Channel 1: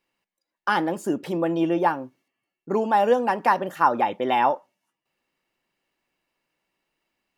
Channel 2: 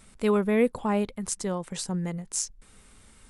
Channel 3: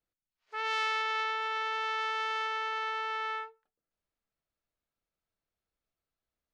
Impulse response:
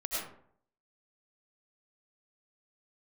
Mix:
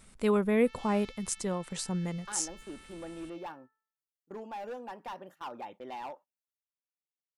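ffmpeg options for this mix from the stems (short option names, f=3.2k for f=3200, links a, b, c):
-filter_complex "[0:a]agate=range=-15dB:threshold=-33dB:ratio=16:detection=peak,volume=17dB,asoftclip=hard,volume=-17dB,adelay=1600,volume=-19dB[a];[1:a]volume=-3dB[b];[2:a]aderivative,bandreject=f=439.9:t=h:w=4,bandreject=f=879.8:t=h:w=4,bandreject=f=1.3197k:t=h:w=4,bandreject=f=1.7596k:t=h:w=4,adelay=100,volume=-9dB[c];[a][b][c]amix=inputs=3:normalize=0"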